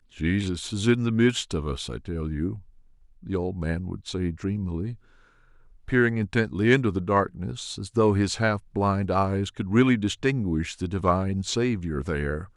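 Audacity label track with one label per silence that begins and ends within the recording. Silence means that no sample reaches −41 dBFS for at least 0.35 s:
2.610000	3.230000	silence
4.950000	5.880000	silence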